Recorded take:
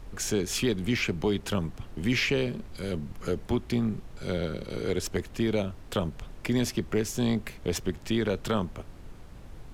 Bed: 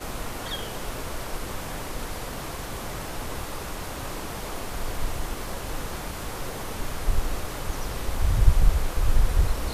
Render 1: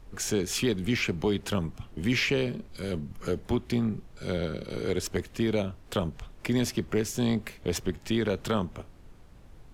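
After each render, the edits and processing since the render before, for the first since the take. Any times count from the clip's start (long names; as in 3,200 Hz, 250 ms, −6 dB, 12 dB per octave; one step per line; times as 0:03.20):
noise reduction from a noise print 6 dB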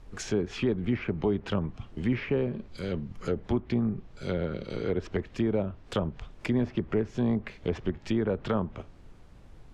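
treble cut that deepens with the level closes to 1,300 Hz, closed at −23.5 dBFS
high-shelf EQ 11,000 Hz −10 dB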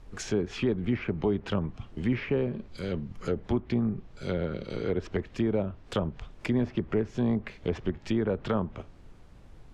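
no processing that can be heard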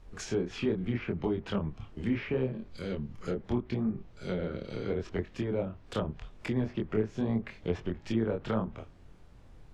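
chorus effect 0.77 Hz, depth 5.8 ms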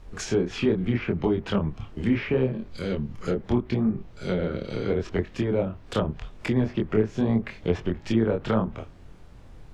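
level +7 dB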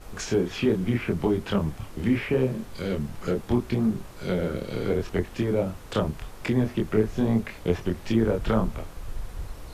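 mix in bed −14 dB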